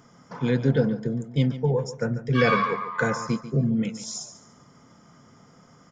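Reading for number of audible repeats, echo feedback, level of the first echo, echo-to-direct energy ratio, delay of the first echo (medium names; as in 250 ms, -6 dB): 3, 29%, -13.5 dB, -13.0 dB, 142 ms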